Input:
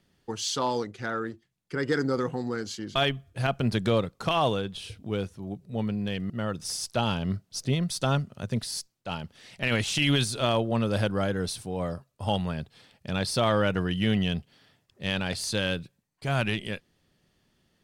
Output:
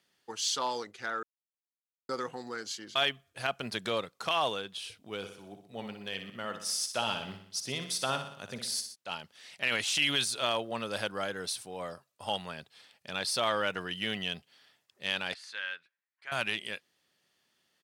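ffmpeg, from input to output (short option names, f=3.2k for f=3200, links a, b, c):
-filter_complex "[0:a]asplit=3[a][b][c];[a]afade=t=out:st=5.21:d=0.02[d];[b]aecho=1:1:61|122|183|244|305|366:0.376|0.199|0.106|0.056|0.0297|0.0157,afade=t=in:st=5.21:d=0.02,afade=t=out:st=8.94:d=0.02[e];[c]afade=t=in:st=8.94:d=0.02[f];[d][e][f]amix=inputs=3:normalize=0,asettb=1/sr,asplit=3[g][h][i];[g]atrim=end=15.344[j];[h]atrim=start=15.34:end=16.32,asetpts=PTS-STARTPTS,afade=t=in:d=0.004:c=qsin,afade=t=out:st=0.976:d=0.004:c=qsin,bandpass=f=1.7k:t=q:w=2.2[k];[i]atrim=start=16.316[l];[j][k]acrossfade=d=0.004:c1=hsin:c2=qsin[m];[m][l]acrossfade=d=0.004:c1=qsin:c2=hsin,asplit=3[n][o][p];[n]atrim=end=1.23,asetpts=PTS-STARTPTS,afade=t=out:st=1.226:d=0.004:c=hsin[q];[o]atrim=start=1.23:end=2.09,asetpts=PTS-STARTPTS,volume=0[r];[p]atrim=start=2.09,asetpts=PTS-STARTPTS,afade=t=in:d=0.004:c=hsin[s];[q][r][s]concat=n=3:v=0:a=1,highpass=f=1.1k:p=1"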